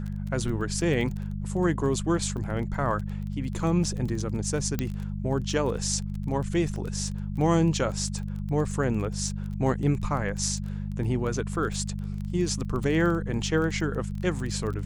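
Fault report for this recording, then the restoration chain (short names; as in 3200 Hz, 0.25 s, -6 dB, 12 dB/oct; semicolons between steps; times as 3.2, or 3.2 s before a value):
crackle 20/s -32 dBFS
hum 50 Hz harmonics 4 -32 dBFS
4.79 pop -13 dBFS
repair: de-click; de-hum 50 Hz, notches 4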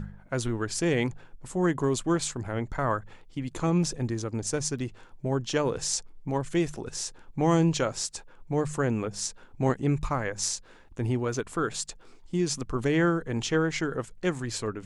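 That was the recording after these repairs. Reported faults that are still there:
4.79 pop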